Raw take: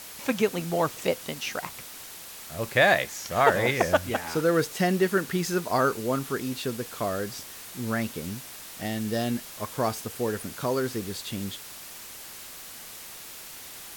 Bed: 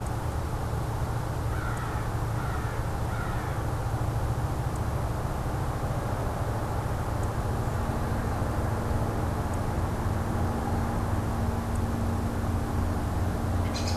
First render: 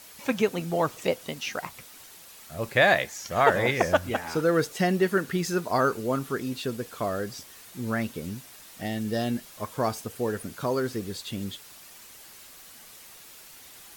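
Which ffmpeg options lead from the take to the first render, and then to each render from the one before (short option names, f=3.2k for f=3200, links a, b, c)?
-af "afftdn=nr=7:nf=-43"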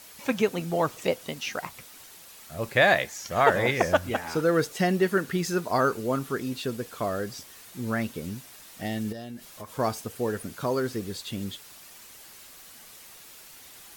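-filter_complex "[0:a]asettb=1/sr,asplit=3[a][b][c];[a]atrim=end=9.124[d];[b]atrim=start=9.12:end=9.79,asetpts=PTS-STARTPTS,afade=t=in:d=0.004:c=qsin,afade=t=out:st=0.666:d=0.004:c=qsin,acompressor=threshold=-35dB:ratio=8:attack=3.2:release=140:knee=1:detection=peak[e];[c]atrim=start=9.786[f];[d][e]acrossfade=d=0.004:c1=hsin:c2=qsin[g];[g][f]acrossfade=d=0.004:c1=qsin:c2=hsin"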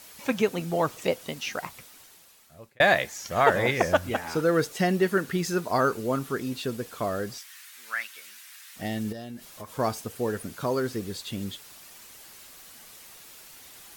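-filter_complex "[0:a]asettb=1/sr,asplit=3[a][b][c];[a]atrim=end=7.384[d];[b]atrim=start=7.38:end=8.76,asetpts=PTS-STARTPTS,afade=t=in:d=0.004:c=qsin,afade=t=out:st=1.376:d=0.004:c=qsin,highpass=f=1.7k:t=q:w=1.6[e];[c]atrim=start=8.756[f];[d][e]acrossfade=d=0.004:c1=hsin:c2=qsin[g];[g][f]acrossfade=d=0.004:c1=qsin:c2=hsin,asplit=2[h][i];[h]atrim=end=2.8,asetpts=PTS-STARTPTS,afade=t=out:st=1.64:d=1.16[j];[i]atrim=start=2.8,asetpts=PTS-STARTPTS,afade=t=in:d=0.004:c=hsin[k];[j][k]concat=n=2:v=0:a=1"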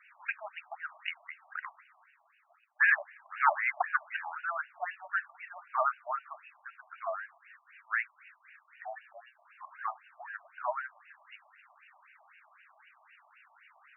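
-filter_complex "[0:a]acrossover=split=230|3300[a][b][c];[a]asoftclip=type=tanh:threshold=-30dB[d];[d][b][c]amix=inputs=3:normalize=0,afftfilt=real='re*between(b*sr/1024,830*pow(2100/830,0.5+0.5*sin(2*PI*3.9*pts/sr))/1.41,830*pow(2100/830,0.5+0.5*sin(2*PI*3.9*pts/sr))*1.41)':imag='im*between(b*sr/1024,830*pow(2100/830,0.5+0.5*sin(2*PI*3.9*pts/sr))/1.41,830*pow(2100/830,0.5+0.5*sin(2*PI*3.9*pts/sr))*1.41)':win_size=1024:overlap=0.75"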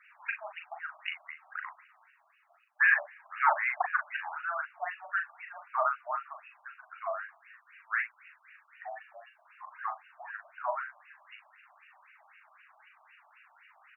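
-filter_complex "[0:a]asplit=2[a][b];[b]adelay=39,volume=-6.5dB[c];[a][c]amix=inputs=2:normalize=0"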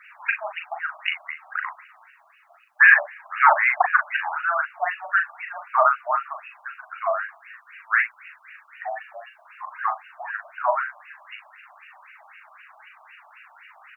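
-af "volume=11dB,alimiter=limit=-3dB:level=0:latency=1"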